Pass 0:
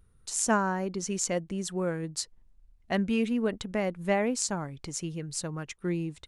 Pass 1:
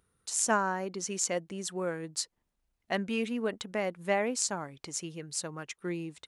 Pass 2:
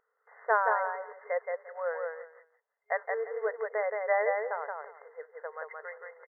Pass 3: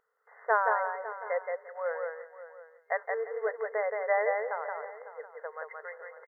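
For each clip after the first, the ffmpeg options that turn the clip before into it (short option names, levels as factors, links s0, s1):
-af "highpass=f=390:p=1"
-af "aecho=1:1:173|346|519:0.668|0.134|0.0267,acrusher=bits=4:mode=log:mix=0:aa=0.000001,afftfilt=real='re*between(b*sr/4096,410,2100)':imag='im*between(b*sr/4096,410,2100)':win_size=4096:overlap=0.75,volume=1.26"
-af "aecho=1:1:551:0.188"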